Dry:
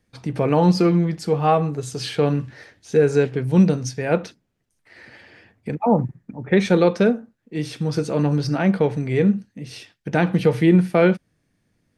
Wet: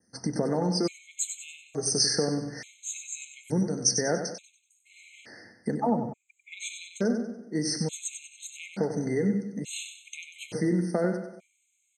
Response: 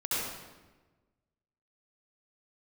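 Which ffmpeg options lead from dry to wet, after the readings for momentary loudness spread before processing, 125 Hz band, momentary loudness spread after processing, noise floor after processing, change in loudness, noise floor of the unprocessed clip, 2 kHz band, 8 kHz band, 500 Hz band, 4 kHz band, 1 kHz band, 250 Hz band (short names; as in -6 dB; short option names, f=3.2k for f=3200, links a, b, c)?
14 LU, -13.0 dB, 16 LU, -73 dBFS, -9.5 dB, -70 dBFS, -10.0 dB, +10.0 dB, -11.5 dB, +1.5 dB, -12.0 dB, -10.5 dB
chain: -filter_complex "[0:a]acompressor=threshold=-24dB:ratio=6,highpass=130,equalizer=f=130:t=q:w=4:g=-6,equalizer=f=230:t=q:w=4:g=4,equalizer=f=1.1k:t=q:w=4:g=-7,lowpass=f=7.5k:w=0.5412,lowpass=f=7.5k:w=1.3066,aexciter=amount=10.8:drive=2.4:freq=5.7k,aecho=1:1:95|190|285|380|475:0.398|0.163|0.0669|0.0274|0.0112,asplit=2[a][b];[1:a]atrim=start_sample=2205[c];[b][c]afir=irnorm=-1:irlink=0,volume=-24.5dB[d];[a][d]amix=inputs=2:normalize=0,adynamicequalizer=threshold=0.01:dfrequency=3800:dqfactor=1.4:tfrequency=3800:tqfactor=1.4:attack=5:release=100:ratio=0.375:range=2:mode=boostabove:tftype=bell,afftfilt=real='re*gt(sin(2*PI*0.57*pts/sr)*(1-2*mod(floor(b*sr/1024/2100),2)),0)':imag='im*gt(sin(2*PI*0.57*pts/sr)*(1-2*mod(floor(b*sr/1024/2100),2)),0)':win_size=1024:overlap=0.75"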